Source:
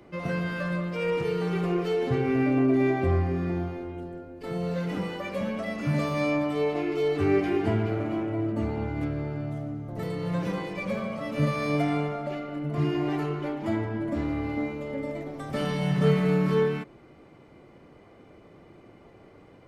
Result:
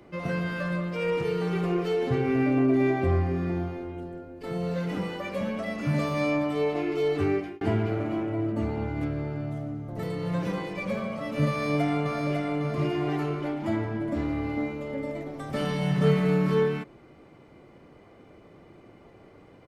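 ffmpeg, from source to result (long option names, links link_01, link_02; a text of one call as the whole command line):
ffmpeg -i in.wav -filter_complex "[0:a]asplit=2[link_01][link_02];[link_02]afade=type=in:start_time=11.5:duration=0.01,afade=type=out:start_time=12.31:duration=0.01,aecho=0:1:550|1100|1650|2200|2750|3300:0.630957|0.283931|0.127769|0.057496|0.0258732|0.0116429[link_03];[link_01][link_03]amix=inputs=2:normalize=0,asplit=2[link_04][link_05];[link_04]atrim=end=7.61,asetpts=PTS-STARTPTS,afade=type=out:start_time=7.2:duration=0.41[link_06];[link_05]atrim=start=7.61,asetpts=PTS-STARTPTS,afade=type=in:duration=0.004:curve=hsin[link_07];[link_06][link_07]concat=n=2:v=0:a=1" out.wav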